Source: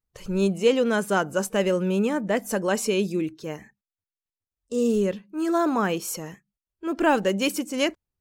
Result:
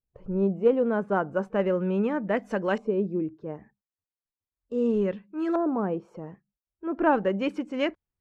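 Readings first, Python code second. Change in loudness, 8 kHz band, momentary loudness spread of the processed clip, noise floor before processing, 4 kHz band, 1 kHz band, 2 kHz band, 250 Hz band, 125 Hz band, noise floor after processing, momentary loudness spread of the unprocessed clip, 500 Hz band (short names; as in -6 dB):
-2.5 dB, under -25 dB, 12 LU, under -85 dBFS, under -10 dB, -2.5 dB, -5.5 dB, -2.0 dB, -2.5 dB, under -85 dBFS, 11 LU, -2.0 dB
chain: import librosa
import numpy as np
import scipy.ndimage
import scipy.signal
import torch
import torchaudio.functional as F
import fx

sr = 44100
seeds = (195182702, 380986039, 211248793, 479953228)

y = fx.cheby_harmonics(x, sr, harmonics=(3,), levels_db=(-21,), full_scale_db=-7.5)
y = fx.filter_lfo_lowpass(y, sr, shape='saw_up', hz=0.36, low_hz=640.0, high_hz=2700.0, q=0.83)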